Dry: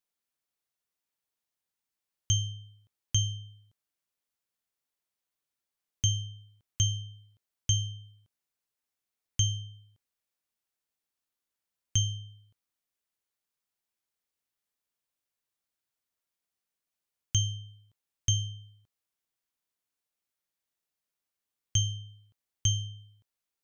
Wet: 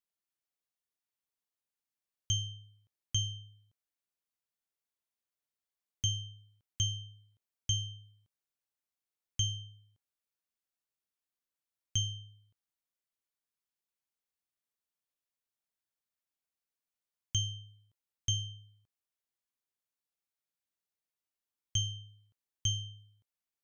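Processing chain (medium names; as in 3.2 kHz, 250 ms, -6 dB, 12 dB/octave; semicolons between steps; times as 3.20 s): dynamic bell 3.5 kHz, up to +6 dB, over -48 dBFS, Q 2.2; trim -6.5 dB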